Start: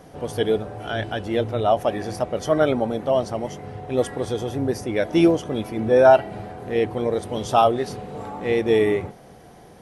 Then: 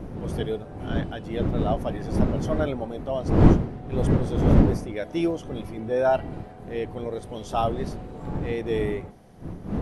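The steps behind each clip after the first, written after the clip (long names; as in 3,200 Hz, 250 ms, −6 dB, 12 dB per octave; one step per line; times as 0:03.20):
wind on the microphone 240 Hz −17 dBFS
level −8.5 dB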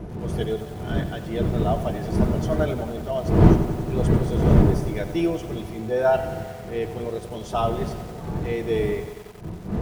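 notch comb filter 270 Hz
feedback echo at a low word length 91 ms, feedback 80%, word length 7 bits, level −12 dB
level +2.5 dB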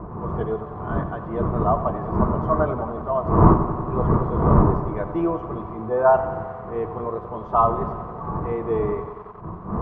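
low-pass with resonance 1,100 Hz, resonance Q 9.9
level −1 dB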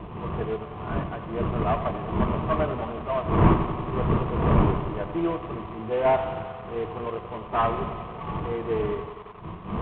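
variable-slope delta modulation 16 kbit/s
level −3 dB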